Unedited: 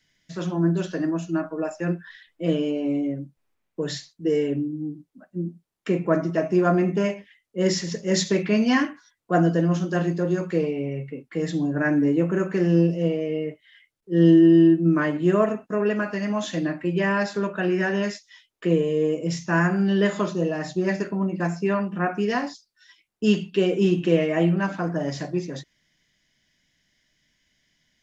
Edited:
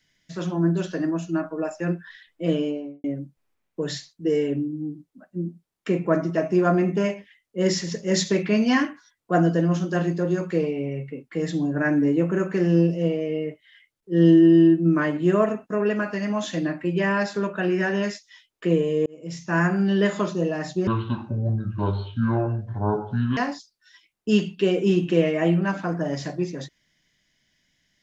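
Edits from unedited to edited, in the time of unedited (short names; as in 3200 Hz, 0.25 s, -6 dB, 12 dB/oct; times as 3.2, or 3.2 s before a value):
2.59–3.04 studio fade out
19.06–19.63 fade in
20.87–22.32 speed 58%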